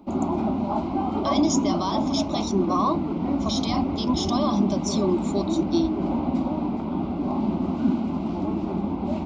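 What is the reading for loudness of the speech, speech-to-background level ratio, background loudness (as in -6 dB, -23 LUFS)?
-27.0 LUFS, -1.0 dB, -26.0 LUFS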